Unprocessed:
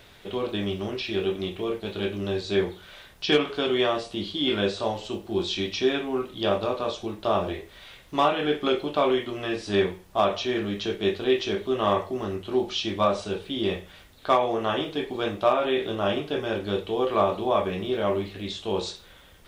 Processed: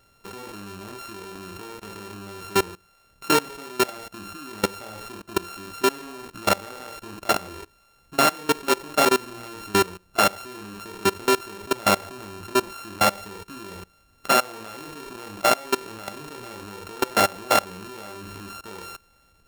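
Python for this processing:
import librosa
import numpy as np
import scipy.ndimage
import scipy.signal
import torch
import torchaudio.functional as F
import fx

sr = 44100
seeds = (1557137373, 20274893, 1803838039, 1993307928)

y = np.r_[np.sort(x[:len(x) // 32 * 32].reshape(-1, 32), axis=1).ravel(), x[len(x) // 32 * 32:]]
y = fx.level_steps(y, sr, step_db=22)
y = y * 10.0 ** (5.5 / 20.0)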